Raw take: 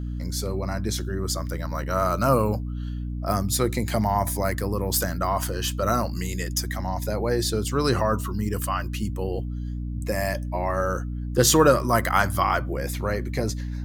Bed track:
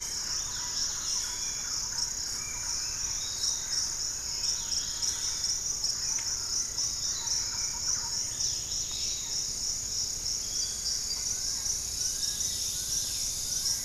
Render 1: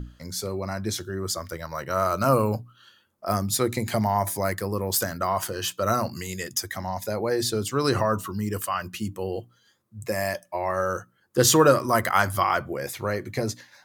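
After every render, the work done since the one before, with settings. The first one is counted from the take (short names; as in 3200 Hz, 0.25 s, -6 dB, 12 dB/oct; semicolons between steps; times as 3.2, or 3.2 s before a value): notches 60/120/180/240/300 Hz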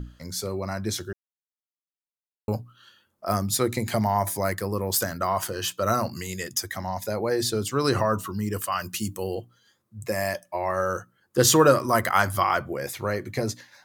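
1.13–2.48 mute; 8.72–9.35 tone controls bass 0 dB, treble +10 dB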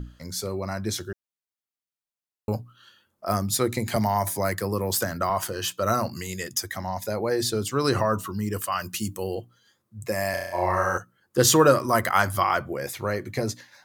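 3.96–5.3 three-band squash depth 40%; 10.3–10.98 flutter echo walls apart 5.7 m, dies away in 0.94 s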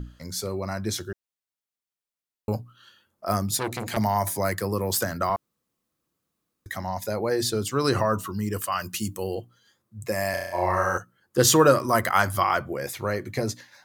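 3.51–3.97 core saturation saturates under 1600 Hz; 5.36–6.66 room tone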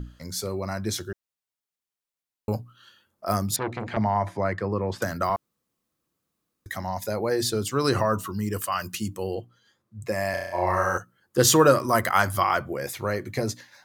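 3.56–5.02 LPF 2300 Hz; 8.95–10.67 high shelf 7200 Hz -9.5 dB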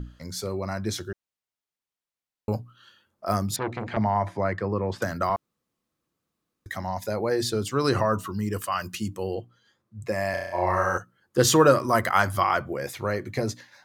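high shelf 7600 Hz -7.5 dB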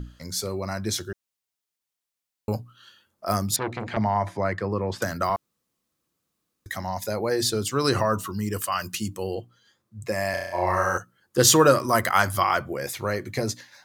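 high shelf 3500 Hz +7.5 dB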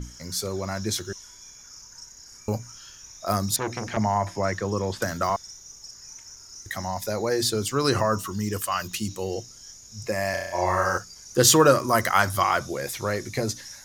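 add bed track -13 dB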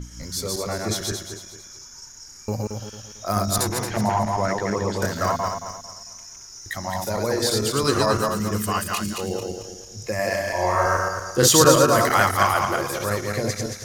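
regenerating reverse delay 0.112 s, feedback 58%, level -1.5 dB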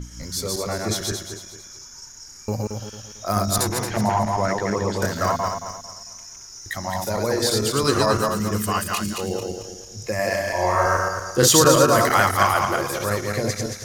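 gain +1 dB; limiter -3 dBFS, peak gain reduction 3 dB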